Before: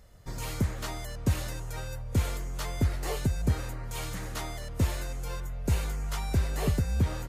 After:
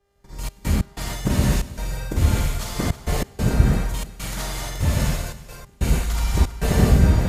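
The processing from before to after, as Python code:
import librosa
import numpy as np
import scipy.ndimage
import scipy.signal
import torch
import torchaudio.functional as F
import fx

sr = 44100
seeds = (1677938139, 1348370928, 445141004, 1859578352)

p1 = fx.local_reverse(x, sr, ms=48.0)
p2 = fx.rev_gated(p1, sr, seeds[0], gate_ms=310, shape='flat', drr_db=-6.0)
p3 = fx.step_gate(p2, sr, bpm=93, pattern='xxx.x.xxxx.xxxx', floor_db=-24.0, edge_ms=4.5)
p4 = fx.dmg_buzz(p3, sr, base_hz=400.0, harmonics=20, level_db=-56.0, tilt_db=-7, odd_only=False)
p5 = p4 + fx.echo_feedback(p4, sr, ms=324, feedback_pct=20, wet_db=-13.0, dry=0)
p6 = fx.band_widen(p5, sr, depth_pct=70)
y = F.gain(torch.from_numpy(p6), 3.5).numpy()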